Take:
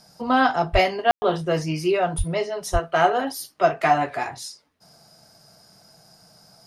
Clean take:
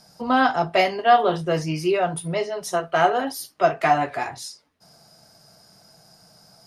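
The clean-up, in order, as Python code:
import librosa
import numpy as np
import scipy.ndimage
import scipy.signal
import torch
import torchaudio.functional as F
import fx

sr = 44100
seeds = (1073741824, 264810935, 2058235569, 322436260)

y = fx.highpass(x, sr, hz=140.0, slope=24, at=(0.72, 0.84), fade=0.02)
y = fx.highpass(y, sr, hz=140.0, slope=24, at=(2.17, 2.29), fade=0.02)
y = fx.highpass(y, sr, hz=140.0, slope=24, at=(2.72, 2.84), fade=0.02)
y = fx.fix_ambience(y, sr, seeds[0], print_start_s=4.58, print_end_s=5.08, start_s=1.11, end_s=1.22)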